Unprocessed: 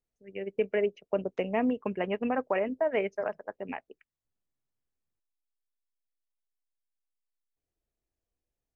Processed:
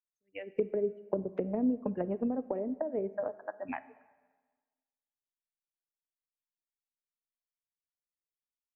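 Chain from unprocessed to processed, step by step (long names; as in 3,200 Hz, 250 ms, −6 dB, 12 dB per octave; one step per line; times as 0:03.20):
noise reduction from a noise print of the clip's start 28 dB
treble cut that deepens with the level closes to 380 Hz, closed at −26.5 dBFS
dense smooth reverb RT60 1.4 s, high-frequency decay 0.9×, DRR 15.5 dB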